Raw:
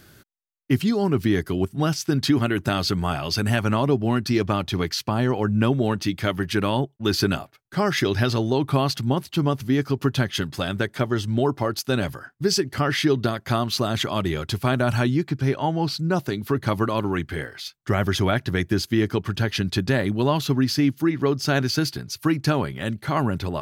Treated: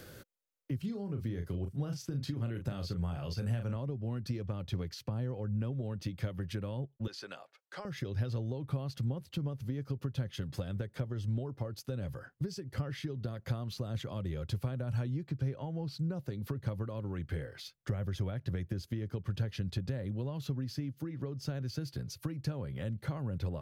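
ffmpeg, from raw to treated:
-filter_complex "[0:a]asettb=1/sr,asplit=3[s0][s1][s2];[s0]atrim=end=0.784[s3];[s1]atrim=start=0.78:end=3.76,asetpts=PTS-STARTPTS,afade=t=in:d=0.004:c=qsin,afade=t=out:st=2.976:d=0.004:c=qsin,asplit=2[s4][s5];[s5]adelay=35,volume=0.447[s6];[s4][s6]amix=inputs=2:normalize=0,atrim=end_sample=131418[s7];[s2]atrim=start=3.756[s8];[s3][s7]acrossfade=d=0.004:c1=hsin:c2=qsin[s9];[s9][s8]acrossfade=d=0.004:c1=qsin:c2=hsin,asettb=1/sr,asplit=3[s10][s11][s12];[s10]atrim=end=7.074[s13];[s11]atrim=start=7.07:end=7.85,asetpts=PTS-STARTPTS,afade=t=in:d=0.004:c=qsin,afade=t=out:st=0.776:d=0.004:c=qsin,highpass=700,lowpass=7500[s14];[s12]atrim=start=7.846[s15];[s13][s14]acrossfade=d=0.004:c1=hsin:c2=qsin[s16];[s16][s15]acrossfade=d=0.004:c1=qsin:c2=hsin,acompressor=threshold=0.0447:ratio=6,equalizer=f=510:t=o:w=0.34:g=14.5,acrossover=split=170[s17][s18];[s18]acompressor=threshold=0.00282:ratio=2.5[s19];[s17][s19]amix=inputs=2:normalize=0"

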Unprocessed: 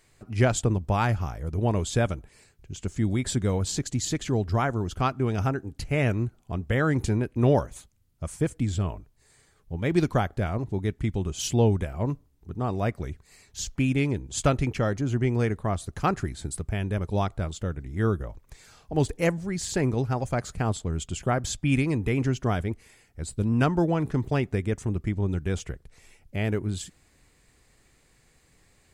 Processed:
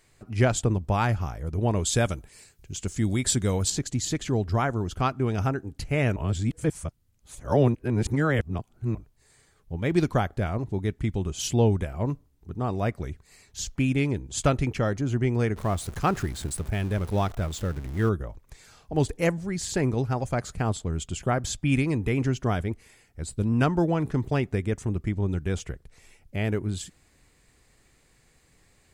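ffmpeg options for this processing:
-filter_complex "[0:a]asettb=1/sr,asplit=3[s0][s1][s2];[s0]atrim=end=1.854[s3];[s1]atrim=start=1.85:end=3.7,asetpts=PTS-STARTPTS,afade=t=in:d=0.004:c=qsin,afade=t=out:st=1.846:d=0.004:c=qsin,highshelf=f=3500:g=9.5[s4];[s2]atrim=start=3.696[s5];[s3][s4]acrossfade=d=0.004:c1=hsin:c2=qsin[s6];[s6][s5]acrossfade=d=0.004:c1=qsin:c2=hsin,asettb=1/sr,asplit=3[s7][s8][s9];[s7]atrim=end=15.564[s10];[s8]atrim=start=15.56:end=18.09,asetpts=PTS-STARTPTS,afade=t=in:d=0.004:c=qsin,afade=t=out:st=2.526:d=0.004:c=qsin,aeval=exprs='val(0)+0.5*0.0141*sgn(val(0))':c=same[s11];[s9]atrim=start=18.086[s12];[s10][s11]acrossfade=d=0.004:c1=hsin:c2=qsin[s13];[s13][s12]acrossfade=d=0.004:c1=qsin:c2=hsin,asplit=3[s14][s15][s16];[s14]atrim=end=6.162[s17];[s15]atrim=start=6.158:end=8.952,asetpts=PTS-STARTPTS,areverse[s18];[s16]atrim=start=8.948[s19];[s17][s18]acrossfade=d=0.004:c1=hsin:c2=hsin[s20];[s20][s19]acrossfade=d=0.004:c1=hsin:c2=hsin"

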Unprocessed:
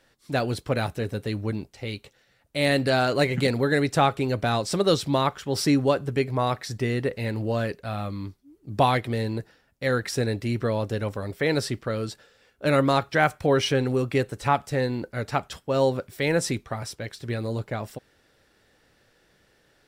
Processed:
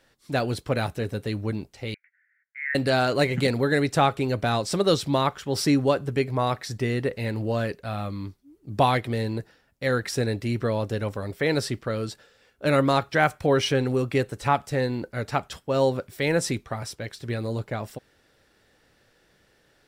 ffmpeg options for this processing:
-filter_complex "[0:a]asettb=1/sr,asplit=3[s0][s1][s2];[s0]atrim=end=1.944[s3];[s1]atrim=start=1.94:end=2.75,asetpts=PTS-STARTPTS,afade=t=in:d=0.004:c=qsin,afade=t=out:st=0.806:d=0.004:c=qsin,asuperpass=centerf=1800:order=8:qfactor=2.5[s4];[s2]atrim=start=2.746[s5];[s3][s4]acrossfade=d=0.004:c1=hsin:c2=qsin[s6];[s6][s5]acrossfade=d=0.004:c1=qsin:c2=hsin"

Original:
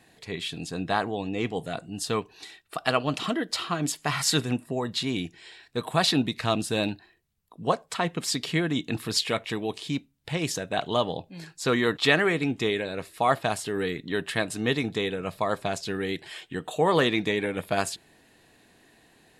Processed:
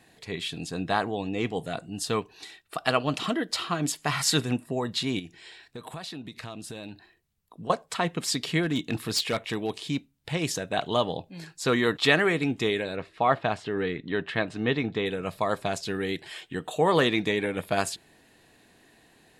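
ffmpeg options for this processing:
-filter_complex "[0:a]asettb=1/sr,asplit=3[s0][s1][s2];[s0]atrim=end=5.194[s3];[s1]atrim=start=5.19:end=7.7,asetpts=PTS-STARTPTS,afade=t=in:d=0.004:c=qsin,afade=t=out:st=2.506:d=0.004:c=qsin,acompressor=threshold=0.0158:ratio=6:attack=3.2:release=140:knee=1:detection=peak[s4];[s2]atrim=start=7.696[s5];[s3][s4]acrossfade=d=0.004:c1=hsin:c2=qsin[s6];[s6][s5]acrossfade=d=0.004:c1=qsin:c2=hsin,asettb=1/sr,asplit=3[s7][s8][s9];[s7]atrim=end=8.634[s10];[s8]atrim=start=8.63:end=9.82,asetpts=PTS-STARTPTS,afade=t=in:d=0.004:c=qsin,afade=t=out:st=1.186:d=0.004:c=qsin,asoftclip=type=hard:threshold=0.1[s11];[s9]atrim=start=9.816[s12];[s10][s11]acrossfade=d=0.004:c1=hsin:c2=qsin[s13];[s13][s12]acrossfade=d=0.004:c1=qsin:c2=hsin,asettb=1/sr,asplit=3[s14][s15][s16];[s14]atrim=end=12.964[s17];[s15]atrim=start=12.96:end=15.06,asetpts=PTS-STARTPTS,afade=t=in:d=0.004:c=qsin,afade=t=out:st=2.096:d=0.004:c=qsin,lowpass=3200[s18];[s16]atrim=start=15.056[s19];[s17][s18]acrossfade=d=0.004:c1=hsin:c2=qsin[s20];[s20][s19]acrossfade=d=0.004:c1=qsin:c2=hsin"

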